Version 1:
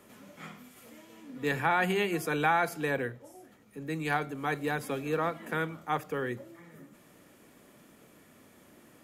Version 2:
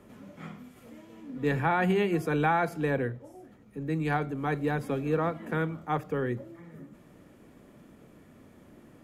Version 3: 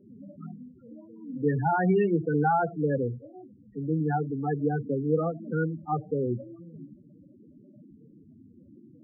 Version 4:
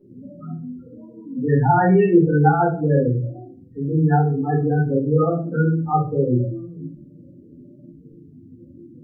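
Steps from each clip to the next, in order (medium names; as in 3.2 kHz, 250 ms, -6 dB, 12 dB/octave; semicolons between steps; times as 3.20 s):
tilt EQ -2.5 dB/octave
loudest bins only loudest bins 8; trim +3 dB
simulated room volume 220 m³, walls furnished, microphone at 4.2 m; trim -1.5 dB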